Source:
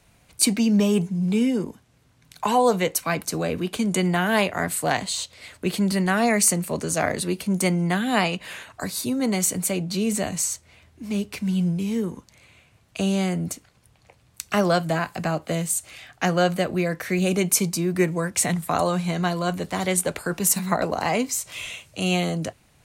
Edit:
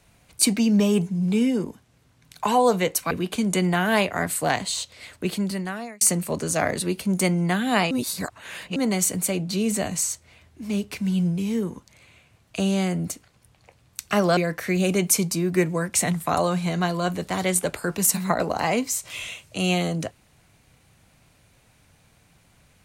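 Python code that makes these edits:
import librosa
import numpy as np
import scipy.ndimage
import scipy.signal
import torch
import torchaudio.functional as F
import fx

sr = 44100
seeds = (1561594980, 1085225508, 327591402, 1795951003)

y = fx.edit(x, sr, fx.cut(start_s=3.11, length_s=0.41),
    fx.fade_out_span(start_s=5.54, length_s=0.88),
    fx.reverse_span(start_s=8.32, length_s=0.85),
    fx.cut(start_s=14.78, length_s=2.01), tone=tone)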